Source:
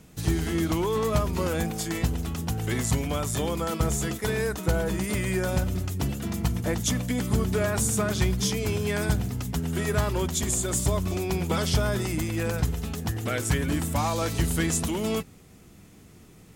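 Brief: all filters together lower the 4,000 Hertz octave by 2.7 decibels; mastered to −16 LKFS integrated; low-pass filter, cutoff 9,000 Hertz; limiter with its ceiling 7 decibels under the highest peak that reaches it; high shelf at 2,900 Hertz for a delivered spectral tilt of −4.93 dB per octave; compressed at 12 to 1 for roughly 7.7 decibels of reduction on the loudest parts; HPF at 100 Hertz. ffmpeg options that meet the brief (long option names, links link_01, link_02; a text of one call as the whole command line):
ffmpeg -i in.wav -af "highpass=100,lowpass=9000,highshelf=frequency=2900:gain=3.5,equalizer=frequency=4000:width_type=o:gain=-6.5,acompressor=threshold=-29dB:ratio=12,volume=19.5dB,alimiter=limit=-6.5dB:level=0:latency=1" out.wav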